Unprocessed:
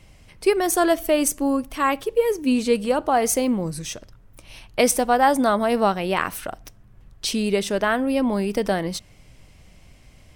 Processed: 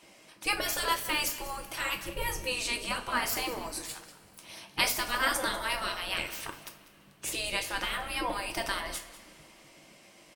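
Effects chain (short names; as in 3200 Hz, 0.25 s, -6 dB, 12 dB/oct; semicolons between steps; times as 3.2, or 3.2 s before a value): spectral gate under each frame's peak -15 dB weak; 1.96–2.45 low shelf 230 Hz +11 dB; on a send: echo 0.194 s -16.5 dB; on the sum: two-slope reverb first 0.3 s, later 2.9 s, from -21 dB, DRR 4 dB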